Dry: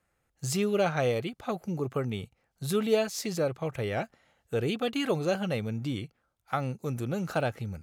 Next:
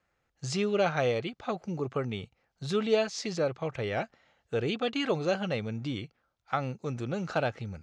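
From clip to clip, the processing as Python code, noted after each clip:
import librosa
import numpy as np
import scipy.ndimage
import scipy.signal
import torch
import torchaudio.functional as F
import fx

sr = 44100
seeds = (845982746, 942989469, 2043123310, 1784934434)

y = scipy.signal.sosfilt(scipy.signal.butter(4, 6200.0, 'lowpass', fs=sr, output='sos'), x)
y = fx.low_shelf(y, sr, hz=350.0, db=-4.0)
y = y * librosa.db_to_amplitude(1.0)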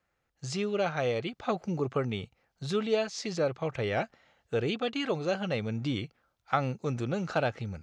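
y = fx.rider(x, sr, range_db=3, speed_s=0.5)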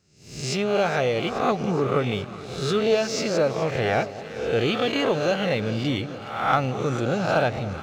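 y = fx.spec_swells(x, sr, rise_s=0.76)
y = fx.echo_alternate(y, sr, ms=210, hz=880.0, feedback_pct=84, wet_db=-14)
y = fx.leveller(y, sr, passes=1)
y = y * librosa.db_to_amplitude(1.5)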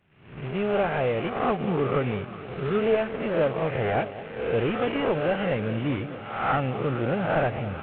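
y = fx.cvsd(x, sr, bps=16000)
y = y * librosa.db_to_amplitude(-1.0)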